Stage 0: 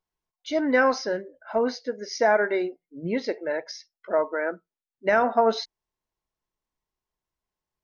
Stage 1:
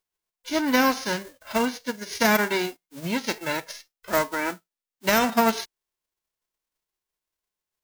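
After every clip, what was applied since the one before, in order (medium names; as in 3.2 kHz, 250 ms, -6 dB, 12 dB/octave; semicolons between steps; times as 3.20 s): formants flattened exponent 0.3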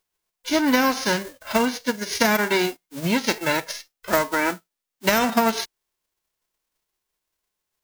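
compression, threshold -22 dBFS, peak gain reduction 7.5 dB; trim +6.5 dB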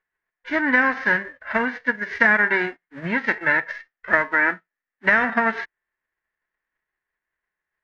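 resonant low-pass 1.8 kHz, resonance Q 7.5; trim -4.5 dB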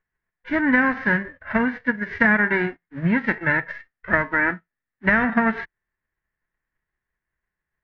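tone controls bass +14 dB, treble -10 dB; trim -1.5 dB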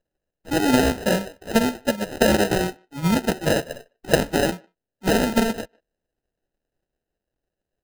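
sample-and-hold 39×; speakerphone echo 150 ms, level -29 dB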